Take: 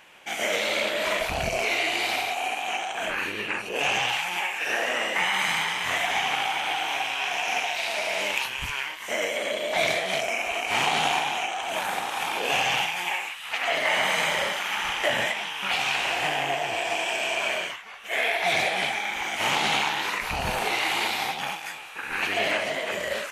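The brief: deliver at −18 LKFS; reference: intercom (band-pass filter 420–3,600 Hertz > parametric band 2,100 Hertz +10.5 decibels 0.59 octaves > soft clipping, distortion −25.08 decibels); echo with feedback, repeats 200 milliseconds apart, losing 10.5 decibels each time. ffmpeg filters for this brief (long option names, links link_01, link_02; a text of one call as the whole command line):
ffmpeg -i in.wav -af "highpass=420,lowpass=3600,equalizer=frequency=2100:width_type=o:width=0.59:gain=10.5,aecho=1:1:200|400|600:0.299|0.0896|0.0269,asoftclip=threshold=-8dB,volume=2.5dB" out.wav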